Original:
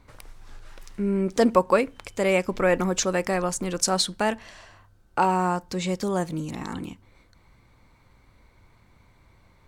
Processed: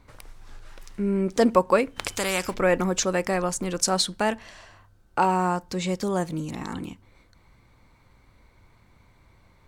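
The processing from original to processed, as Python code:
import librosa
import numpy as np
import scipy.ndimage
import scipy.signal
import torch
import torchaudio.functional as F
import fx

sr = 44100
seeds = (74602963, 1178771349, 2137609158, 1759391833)

y = fx.spectral_comp(x, sr, ratio=2.0, at=(1.96, 2.53), fade=0.02)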